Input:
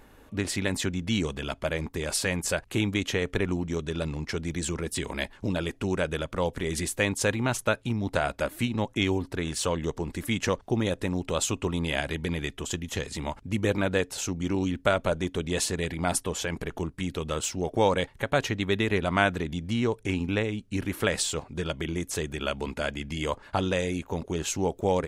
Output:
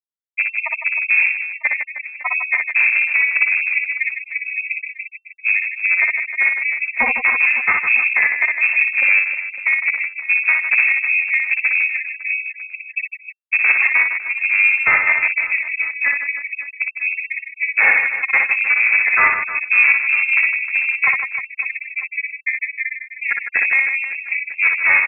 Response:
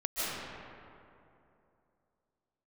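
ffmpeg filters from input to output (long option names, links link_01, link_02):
-af "afftfilt=real='re*gte(hypot(re,im),0.282)':imag='im*gte(hypot(re,im),0.282)':win_size=1024:overlap=0.75,tremolo=f=280:d=1,apsyclip=17dB,asoftclip=type=hard:threshold=-11dB,aecho=1:1:60|156|309.6|555.4|948.6:0.631|0.398|0.251|0.158|0.1,lowpass=frequency=2300:width_type=q:width=0.5098,lowpass=frequency=2300:width_type=q:width=0.6013,lowpass=frequency=2300:width_type=q:width=0.9,lowpass=frequency=2300:width_type=q:width=2.563,afreqshift=-2700,volume=2dB"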